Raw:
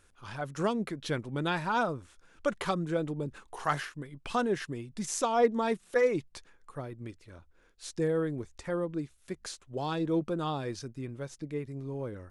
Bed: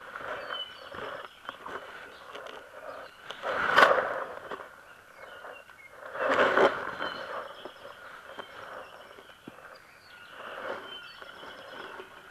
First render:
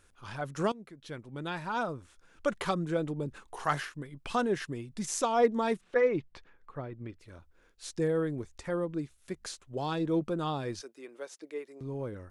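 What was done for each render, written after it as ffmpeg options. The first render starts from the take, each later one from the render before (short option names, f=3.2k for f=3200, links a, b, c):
-filter_complex "[0:a]asettb=1/sr,asplit=3[a][b][c];[a]atrim=end=5.814[d];[b]atrim=start=5.81:end=7.19,asetpts=PTS-STARTPTS,afade=t=in:d=0.004:c=qsin,afade=t=out:st=1.376:d=0.004:c=qsin,lowpass=3k[e];[c]atrim=start=7.186[f];[d][e]acrossfade=d=0.004:c1=hsin:c2=qsin[g];[g][f]acrossfade=d=0.004:c1=qsin:c2=hsin,asettb=1/sr,asplit=3[h][i][j];[h]atrim=end=10.814[k];[i]atrim=start=10.81:end=11.81,asetpts=PTS-STARTPTS,afade=t=in:d=0.004:c=qsin,afade=t=out:st=0.996:d=0.004:c=qsin,highpass=f=370:w=0.5412,highpass=f=370:w=1.3066[l];[j]atrim=start=11.806[m];[k][l]acrossfade=d=0.004:c1=hsin:c2=qsin[n];[n][m]acrossfade=d=0.004:c1=qsin:c2=hsin,asplit=2[o][p];[o]atrim=end=0.72,asetpts=PTS-STARTPTS,afade=t=out:st=0.716:d=0.004:c=hsin:silence=0.125893[q];[p]atrim=start=0.72,asetpts=PTS-STARTPTS,afade=t=in:d=1.78:silence=0.125893[r];[q][r]concat=n=2:v=0:a=1"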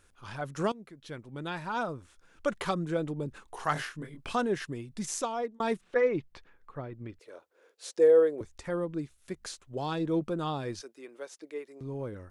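-filter_complex "[0:a]asettb=1/sr,asplit=3[a][b][c];[a]atrim=end=3.734[d];[b]atrim=start=3.73:end=4.33,asetpts=PTS-STARTPTS,afade=t=in:d=0.004:c=qsin,afade=t=out:st=0.596:d=0.004:c=qsin,asplit=2[e][f];[f]adelay=25,volume=-3.5dB[g];[e][g]amix=inputs=2:normalize=0,atrim=end_sample=26460[h];[c]atrim=start=4.326[i];[d][h]acrossfade=d=0.004:c1=hsin:c2=qsin[j];[j][i]acrossfade=d=0.004:c1=qsin:c2=hsin,asettb=1/sr,asplit=3[k][l][m];[k]atrim=end=7.194[n];[l]atrim=start=7.19:end=8.41,asetpts=PTS-STARTPTS,afade=t=in:d=0.004:c=qsin,afade=t=out:st=1.216:d=0.004:c=qsin,highpass=f=470:t=q:w=3.4[o];[m]atrim=start=8.406[p];[n][o]acrossfade=d=0.004:c1=hsin:c2=qsin[q];[q][p]acrossfade=d=0.004:c1=qsin:c2=hsin,asplit=2[r][s];[r]atrim=end=5.6,asetpts=PTS-STARTPTS,afade=t=out:st=5.09:d=0.51[t];[s]atrim=start=5.6,asetpts=PTS-STARTPTS,afade=t=in:d=0.004:c=hsin[u];[t][u]concat=n=2:v=0:a=1"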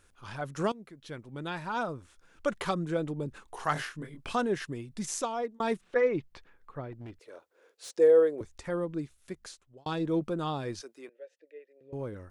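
-filter_complex "[0:a]asettb=1/sr,asplit=3[a][b][c];[a]atrim=end=6.924[d];[b]atrim=start=6.92:end=7.95,asetpts=PTS-STARTPTS,afade=t=in:d=0.004:c=qsin,afade=t=out:st=1.026:d=0.004:c=qsin,asoftclip=type=hard:threshold=-39.5dB[e];[c]atrim=start=7.946[f];[d][e]acrossfade=d=0.004:c1=hsin:c2=qsin[g];[g][f]acrossfade=d=0.004:c1=qsin:c2=hsin,asettb=1/sr,asplit=3[h][i][j];[h]atrim=end=11.094[k];[i]atrim=start=11.09:end=11.93,asetpts=PTS-STARTPTS,afade=t=in:d=0.004:c=qsin,afade=t=out:st=0.836:d=0.004:c=qsin,asplit=3[l][m][n];[l]bandpass=f=530:t=q:w=8,volume=0dB[o];[m]bandpass=f=1.84k:t=q:w=8,volume=-6dB[p];[n]bandpass=f=2.48k:t=q:w=8,volume=-9dB[q];[o][p][q]amix=inputs=3:normalize=0[r];[j]atrim=start=11.926[s];[k][r]acrossfade=d=0.004:c1=hsin:c2=qsin[t];[t][s]acrossfade=d=0.004:c1=qsin:c2=hsin,asplit=2[u][v];[u]atrim=end=9.86,asetpts=PTS-STARTPTS,afade=t=out:st=9.18:d=0.68[w];[v]atrim=start=9.86,asetpts=PTS-STARTPTS,afade=t=in:d=0.004:c=hsin[x];[w][x]concat=n=2:v=0:a=1"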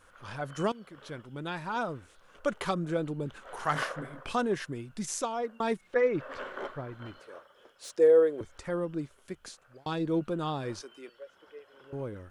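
-filter_complex "[1:a]volume=-16.5dB[a];[0:a][a]amix=inputs=2:normalize=0"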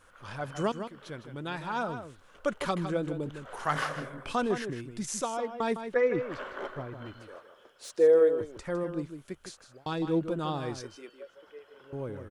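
-filter_complex "[0:a]asplit=2[a][b];[b]adelay=157.4,volume=-9dB,highshelf=f=4k:g=-3.54[c];[a][c]amix=inputs=2:normalize=0"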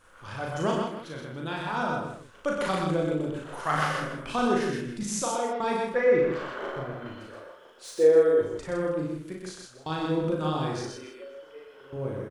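-filter_complex "[0:a]asplit=2[a][b];[b]adelay=38,volume=-2.5dB[c];[a][c]amix=inputs=2:normalize=0,aecho=1:1:58|125:0.473|0.668"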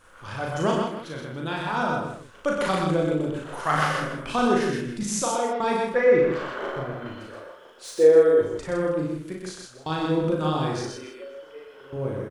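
-af "volume=3.5dB"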